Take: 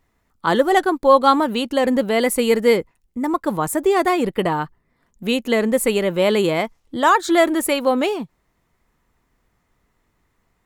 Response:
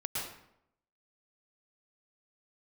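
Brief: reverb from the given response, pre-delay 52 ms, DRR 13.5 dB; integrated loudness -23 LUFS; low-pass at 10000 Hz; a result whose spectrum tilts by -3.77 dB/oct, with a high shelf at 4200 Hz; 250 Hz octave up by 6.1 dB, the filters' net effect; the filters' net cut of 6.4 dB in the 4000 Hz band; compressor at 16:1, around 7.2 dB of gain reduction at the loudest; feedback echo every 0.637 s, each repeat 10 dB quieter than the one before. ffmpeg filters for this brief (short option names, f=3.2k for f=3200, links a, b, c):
-filter_complex "[0:a]lowpass=10k,equalizer=f=250:t=o:g=7.5,equalizer=f=4k:t=o:g=-5,highshelf=f=4.2k:g=-7.5,acompressor=threshold=-15dB:ratio=16,aecho=1:1:637|1274|1911|2548:0.316|0.101|0.0324|0.0104,asplit=2[a][b];[1:a]atrim=start_sample=2205,adelay=52[c];[b][c]afir=irnorm=-1:irlink=0,volume=-17.5dB[d];[a][d]amix=inputs=2:normalize=0,volume=-2dB"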